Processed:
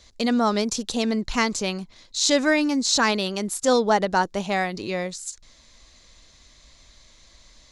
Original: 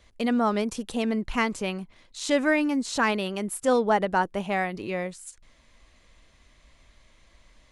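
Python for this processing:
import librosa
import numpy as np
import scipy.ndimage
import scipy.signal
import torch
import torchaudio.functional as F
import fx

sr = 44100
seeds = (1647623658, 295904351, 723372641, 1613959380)

y = fx.band_shelf(x, sr, hz=5200.0, db=11.0, octaves=1.2)
y = y * librosa.db_to_amplitude(2.5)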